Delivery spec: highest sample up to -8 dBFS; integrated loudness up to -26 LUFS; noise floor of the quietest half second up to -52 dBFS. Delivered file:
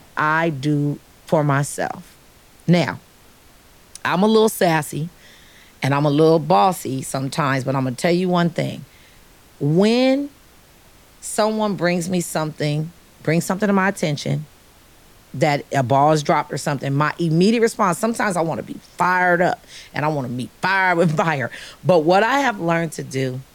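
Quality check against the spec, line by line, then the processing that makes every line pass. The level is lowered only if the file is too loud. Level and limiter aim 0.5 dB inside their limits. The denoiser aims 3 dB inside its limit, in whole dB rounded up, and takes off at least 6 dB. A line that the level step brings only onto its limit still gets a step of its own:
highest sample -3.5 dBFS: fail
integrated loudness -19.5 LUFS: fail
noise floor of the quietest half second -49 dBFS: fail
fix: gain -7 dB

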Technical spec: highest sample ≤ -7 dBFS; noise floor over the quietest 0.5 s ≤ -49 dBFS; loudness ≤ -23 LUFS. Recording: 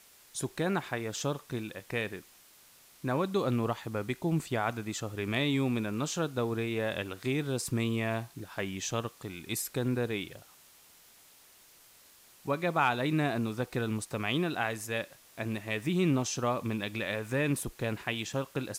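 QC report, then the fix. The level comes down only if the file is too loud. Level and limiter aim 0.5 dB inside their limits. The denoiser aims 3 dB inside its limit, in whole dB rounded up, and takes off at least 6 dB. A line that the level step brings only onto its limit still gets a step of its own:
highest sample -15.0 dBFS: OK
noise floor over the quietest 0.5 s -59 dBFS: OK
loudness -32.5 LUFS: OK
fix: none

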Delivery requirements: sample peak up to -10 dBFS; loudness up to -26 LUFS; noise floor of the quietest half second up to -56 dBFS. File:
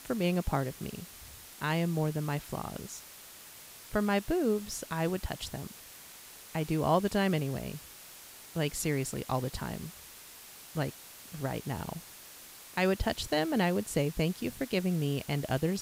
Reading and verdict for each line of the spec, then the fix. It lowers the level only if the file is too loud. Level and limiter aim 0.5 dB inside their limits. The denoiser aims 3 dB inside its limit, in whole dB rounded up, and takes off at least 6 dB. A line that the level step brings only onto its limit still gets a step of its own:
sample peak -14.0 dBFS: OK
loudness -32.5 LUFS: OK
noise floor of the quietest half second -50 dBFS: fail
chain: denoiser 9 dB, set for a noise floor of -50 dBFS

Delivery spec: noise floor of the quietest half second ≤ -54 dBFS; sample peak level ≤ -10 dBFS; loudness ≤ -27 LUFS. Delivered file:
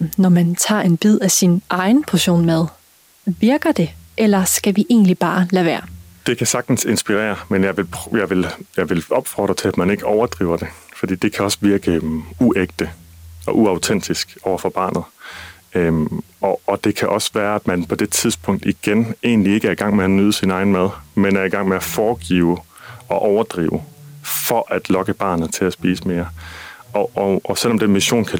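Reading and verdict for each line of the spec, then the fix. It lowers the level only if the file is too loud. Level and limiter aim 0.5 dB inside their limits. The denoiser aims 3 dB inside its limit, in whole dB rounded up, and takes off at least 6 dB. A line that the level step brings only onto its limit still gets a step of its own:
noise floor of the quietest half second -52 dBFS: fail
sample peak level -5.5 dBFS: fail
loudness -17.5 LUFS: fail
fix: gain -10 dB

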